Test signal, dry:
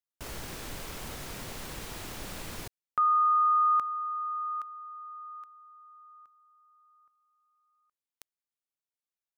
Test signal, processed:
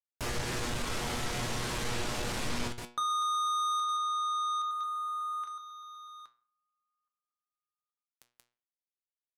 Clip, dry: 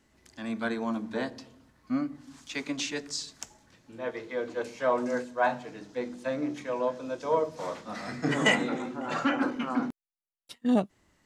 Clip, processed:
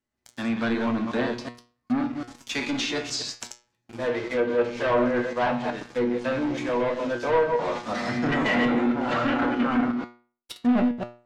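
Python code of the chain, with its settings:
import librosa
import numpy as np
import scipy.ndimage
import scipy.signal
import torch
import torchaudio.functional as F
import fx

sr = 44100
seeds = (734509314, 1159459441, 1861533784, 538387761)

y = fx.reverse_delay(x, sr, ms=124, wet_db=-8)
y = fx.leveller(y, sr, passes=5)
y = fx.comb_fb(y, sr, f0_hz=120.0, decay_s=0.41, harmonics='all', damping=0.2, mix_pct=80)
y = fx.env_lowpass_down(y, sr, base_hz=2700.0, full_db=-20.0)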